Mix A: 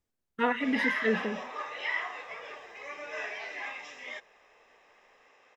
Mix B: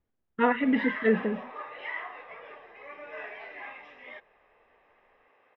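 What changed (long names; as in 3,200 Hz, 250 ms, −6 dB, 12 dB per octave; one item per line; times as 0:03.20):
speech +5.5 dB
master: add high-frequency loss of the air 440 metres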